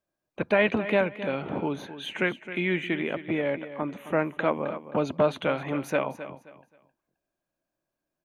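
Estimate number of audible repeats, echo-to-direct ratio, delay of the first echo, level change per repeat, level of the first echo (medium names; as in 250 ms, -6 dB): 2, -12.5 dB, 264 ms, -11.5 dB, -13.0 dB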